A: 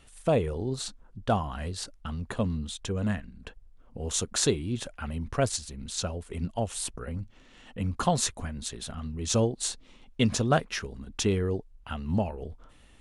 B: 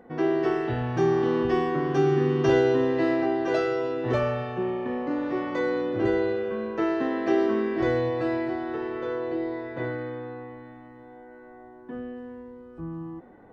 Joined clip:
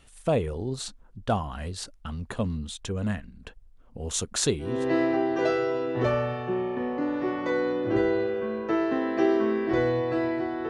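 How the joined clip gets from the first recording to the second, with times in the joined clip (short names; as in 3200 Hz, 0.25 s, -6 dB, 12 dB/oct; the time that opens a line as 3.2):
A
4.75 switch to B from 2.84 s, crossfade 0.34 s linear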